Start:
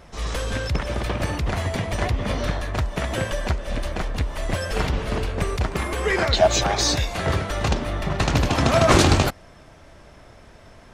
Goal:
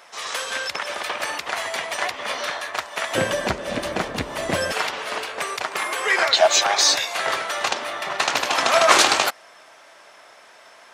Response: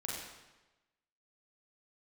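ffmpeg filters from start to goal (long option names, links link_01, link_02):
-af "asetnsamples=nb_out_samples=441:pad=0,asendcmd='3.15 highpass f 200;4.72 highpass f 790',highpass=860,volume=5.5dB"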